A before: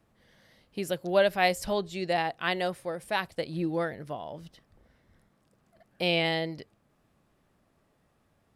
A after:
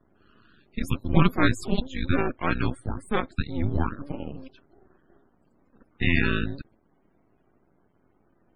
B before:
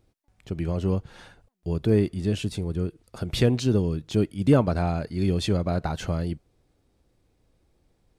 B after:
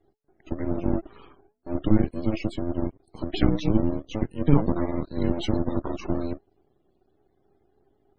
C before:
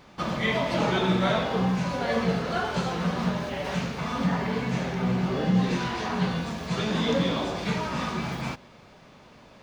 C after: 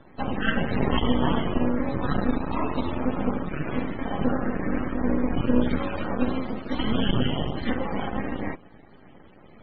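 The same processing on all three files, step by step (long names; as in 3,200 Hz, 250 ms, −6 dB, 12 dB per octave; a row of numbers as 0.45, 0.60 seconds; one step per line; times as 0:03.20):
frequency shifter −430 Hz
half-wave rectification
spectral peaks only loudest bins 64
loudness normalisation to −27 LKFS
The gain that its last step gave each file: +8.0, +3.5, +5.5 decibels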